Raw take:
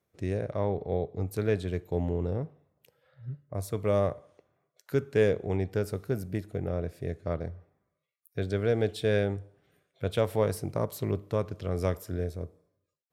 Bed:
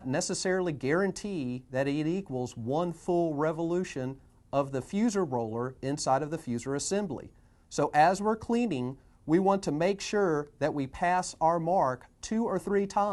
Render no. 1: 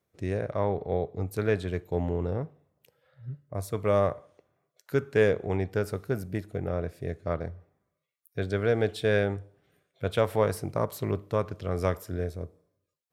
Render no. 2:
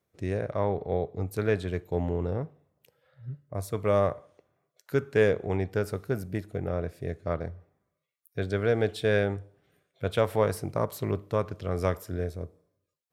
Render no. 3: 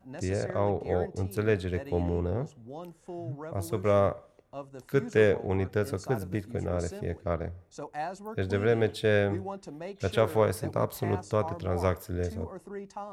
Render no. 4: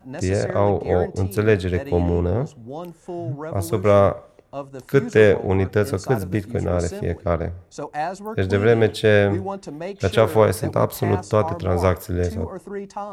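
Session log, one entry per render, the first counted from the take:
dynamic bell 1.3 kHz, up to +6 dB, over -43 dBFS, Q 0.73
no audible change
add bed -12.5 dB
trim +9 dB; peak limiter -2 dBFS, peak gain reduction 1 dB

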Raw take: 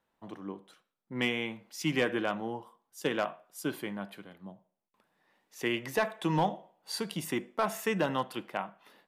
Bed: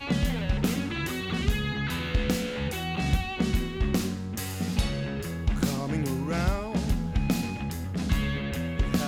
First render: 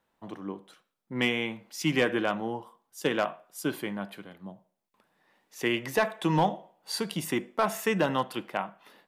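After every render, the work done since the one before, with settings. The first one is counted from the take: trim +3.5 dB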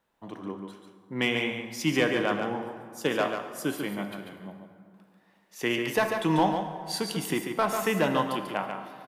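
delay 142 ms -6.5 dB; plate-style reverb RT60 2.2 s, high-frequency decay 0.6×, DRR 8 dB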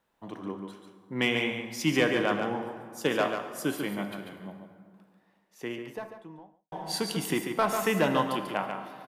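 4.53–6.72 s: studio fade out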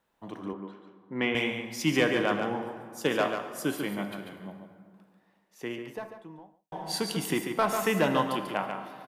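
0.53–1.35 s: band-pass 150–2400 Hz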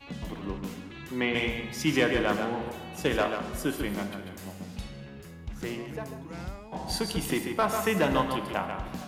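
add bed -12.5 dB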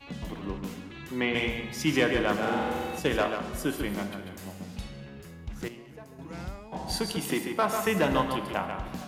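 2.38–2.99 s: flutter echo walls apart 7.9 m, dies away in 1.5 s; 5.68–6.19 s: feedback comb 130 Hz, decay 1.6 s, mix 70%; 7.12–7.87 s: high-pass 140 Hz

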